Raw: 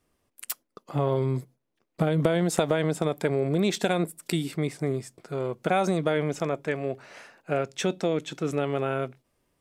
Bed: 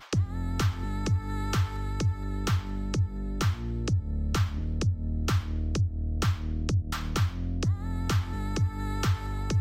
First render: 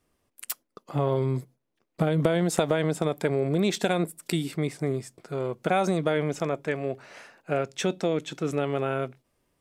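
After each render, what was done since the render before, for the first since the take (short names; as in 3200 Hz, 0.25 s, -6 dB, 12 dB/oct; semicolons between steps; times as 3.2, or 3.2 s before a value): nothing audible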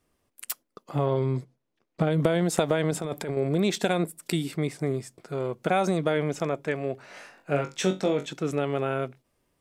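1.06–2.11 LPF 6700 Hz; 2.91–3.37 negative-ratio compressor -30 dBFS; 7.06–8.26 flutter echo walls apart 3.6 m, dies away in 0.22 s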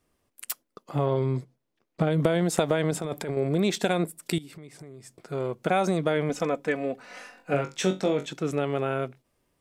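4.38–5.18 compressor 8:1, threshold -41 dBFS; 6.29–7.54 comb 4 ms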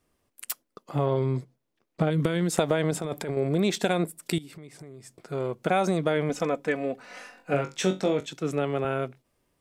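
2.1–2.53 bell 700 Hz -12.5 dB 0.7 oct; 8.2–8.85 three-band expander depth 40%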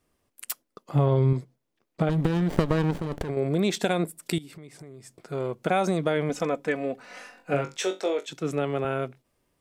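0.91–1.33 bell 89 Hz +9.5 dB 1.9 oct; 2.09–3.29 running maximum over 33 samples; 7.77–8.29 Chebyshev high-pass 380 Hz, order 3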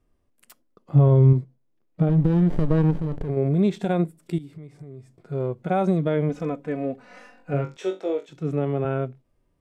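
tilt -2.5 dB/oct; harmonic-percussive split percussive -11 dB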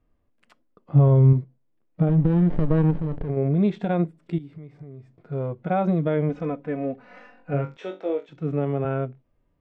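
LPF 3000 Hz 12 dB/oct; notch 380 Hz, Q 12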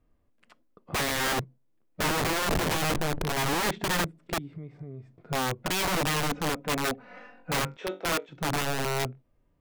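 self-modulated delay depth 0.18 ms; wrapped overs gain 22 dB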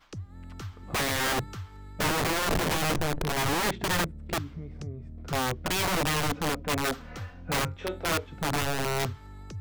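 add bed -13 dB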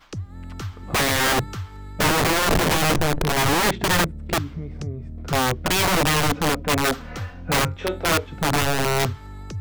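gain +7.5 dB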